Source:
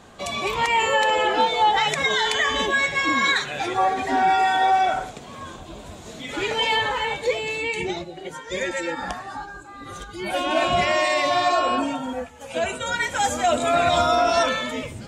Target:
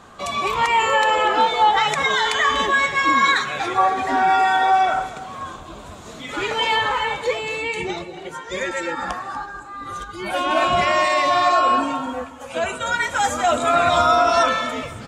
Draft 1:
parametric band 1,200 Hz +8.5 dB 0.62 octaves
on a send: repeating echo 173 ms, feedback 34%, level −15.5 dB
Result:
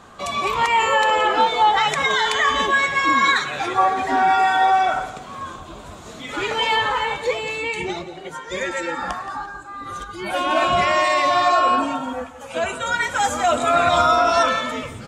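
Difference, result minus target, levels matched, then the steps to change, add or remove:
echo 69 ms early
change: repeating echo 242 ms, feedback 34%, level −15.5 dB

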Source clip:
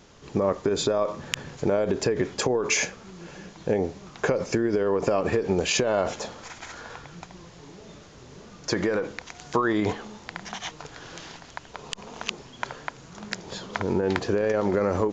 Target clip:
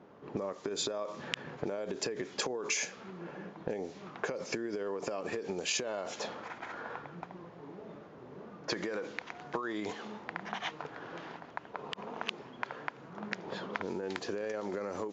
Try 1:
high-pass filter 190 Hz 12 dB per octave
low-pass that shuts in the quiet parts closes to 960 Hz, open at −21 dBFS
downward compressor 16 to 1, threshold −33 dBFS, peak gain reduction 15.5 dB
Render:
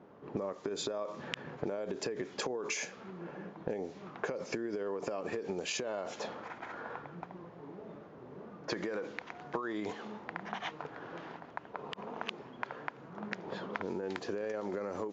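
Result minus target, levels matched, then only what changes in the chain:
4,000 Hz band −2.5 dB
add after downward compressor: high-shelf EQ 2,400 Hz +6 dB

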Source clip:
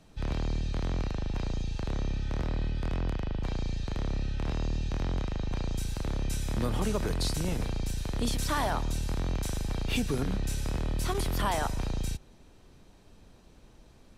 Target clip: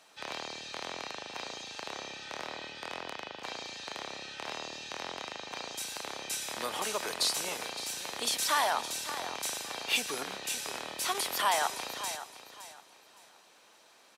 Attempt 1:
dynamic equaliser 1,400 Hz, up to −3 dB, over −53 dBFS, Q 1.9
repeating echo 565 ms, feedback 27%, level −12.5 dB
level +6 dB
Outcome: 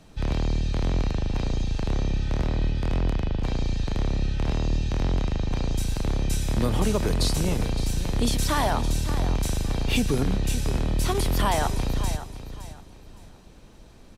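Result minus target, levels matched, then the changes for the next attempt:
1,000 Hz band −5.0 dB
add after dynamic equaliser: high-pass filter 820 Hz 12 dB per octave

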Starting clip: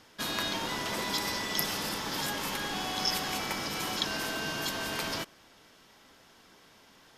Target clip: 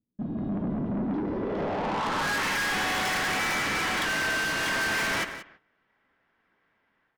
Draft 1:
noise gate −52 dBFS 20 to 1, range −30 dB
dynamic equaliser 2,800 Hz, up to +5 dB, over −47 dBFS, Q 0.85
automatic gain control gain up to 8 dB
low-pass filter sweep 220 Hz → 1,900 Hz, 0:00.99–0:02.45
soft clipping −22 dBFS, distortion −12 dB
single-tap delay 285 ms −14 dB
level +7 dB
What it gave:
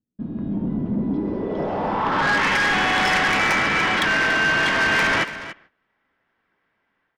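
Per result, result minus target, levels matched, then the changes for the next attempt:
echo 104 ms late; soft clipping: distortion −7 dB
change: single-tap delay 181 ms −14 dB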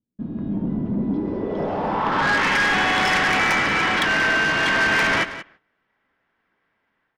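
soft clipping: distortion −7 dB
change: soft clipping −33.5 dBFS, distortion −4 dB

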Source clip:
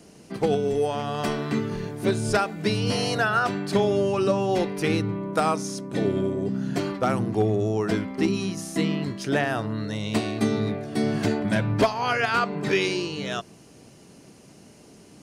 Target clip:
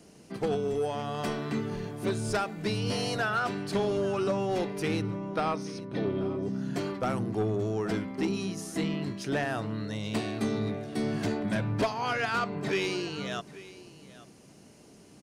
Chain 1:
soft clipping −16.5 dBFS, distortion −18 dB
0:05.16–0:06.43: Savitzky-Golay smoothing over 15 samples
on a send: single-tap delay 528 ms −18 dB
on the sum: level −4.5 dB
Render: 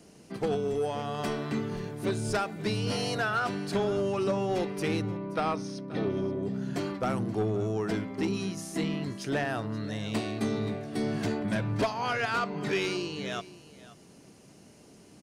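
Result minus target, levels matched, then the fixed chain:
echo 307 ms early
soft clipping −16.5 dBFS, distortion −18 dB
0:05.16–0:06.43: Savitzky-Golay smoothing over 15 samples
on a send: single-tap delay 835 ms −18 dB
on the sum: level −4.5 dB

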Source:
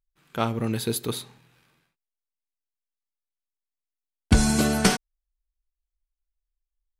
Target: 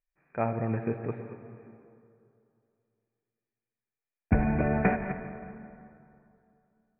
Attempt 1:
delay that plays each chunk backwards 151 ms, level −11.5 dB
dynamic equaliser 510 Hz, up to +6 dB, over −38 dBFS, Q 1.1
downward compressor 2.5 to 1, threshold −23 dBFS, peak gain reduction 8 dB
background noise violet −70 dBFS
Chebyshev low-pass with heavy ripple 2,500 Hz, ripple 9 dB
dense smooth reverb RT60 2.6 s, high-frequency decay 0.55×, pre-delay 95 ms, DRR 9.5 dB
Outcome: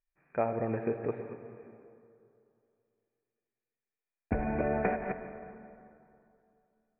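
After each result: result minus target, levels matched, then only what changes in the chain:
downward compressor: peak gain reduction +8 dB; 125 Hz band −5.0 dB
remove: downward compressor 2.5 to 1, threshold −23 dBFS, peak gain reduction 8 dB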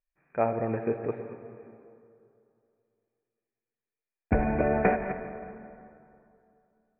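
125 Hz band −5.0 dB
change: dynamic equaliser 140 Hz, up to +6 dB, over −38 dBFS, Q 1.1

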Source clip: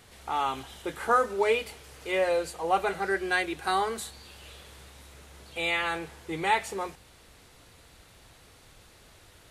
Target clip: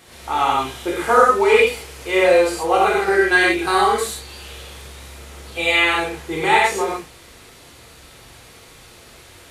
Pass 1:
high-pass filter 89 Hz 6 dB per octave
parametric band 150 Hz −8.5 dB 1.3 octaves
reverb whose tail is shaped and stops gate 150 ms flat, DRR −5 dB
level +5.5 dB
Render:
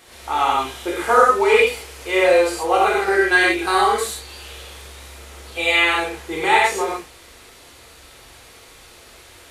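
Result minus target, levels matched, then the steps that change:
125 Hz band −3.5 dB
remove: parametric band 150 Hz −8.5 dB 1.3 octaves

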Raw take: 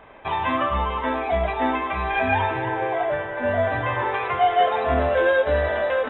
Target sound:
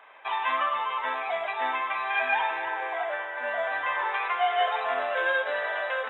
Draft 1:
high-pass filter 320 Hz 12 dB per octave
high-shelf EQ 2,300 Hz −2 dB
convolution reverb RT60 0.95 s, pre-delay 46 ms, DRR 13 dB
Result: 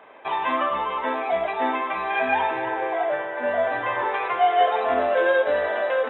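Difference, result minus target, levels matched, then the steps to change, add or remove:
250 Hz band +13.0 dB
change: high-pass filter 1,000 Hz 12 dB per octave

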